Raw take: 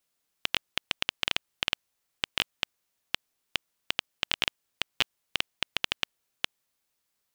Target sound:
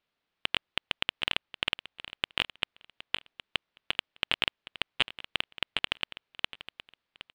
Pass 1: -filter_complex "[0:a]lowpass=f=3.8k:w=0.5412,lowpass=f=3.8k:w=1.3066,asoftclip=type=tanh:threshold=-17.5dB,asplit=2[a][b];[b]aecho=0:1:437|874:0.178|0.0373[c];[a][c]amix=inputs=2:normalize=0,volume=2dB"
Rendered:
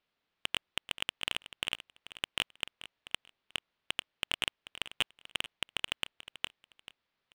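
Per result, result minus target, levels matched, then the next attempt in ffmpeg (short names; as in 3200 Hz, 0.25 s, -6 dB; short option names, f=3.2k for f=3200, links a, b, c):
echo 0.329 s early; soft clip: distortion +12 dB
-filter_complex "[0:a]lowpass=f=3.8k:w=0.5412,lowpass=f=3.8k:w=1.3066,asoftclip=type=tanh:threshold=-17.5dB,asplit=2[a][b];[b]aecho=0:1:766|1532:0.178|0.0373[c];[a][c]amix=inputs=2:normalize=0,volume=2dB"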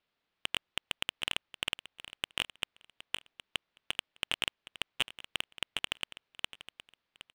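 soft clip: distortion +12 dB
-filter_complex "[0:a]lowpass=f=3.8k:w=0.5412,lowpass=f=3.8k:w=1.3066,asoftclip=type=tanh:threshold=-8dB,asplit=2[a][b];[b]aecho=0:1:766|1532:0.178|0.0373[c];[a][c]amix=inputs=2:normalize=0,volume=2dB"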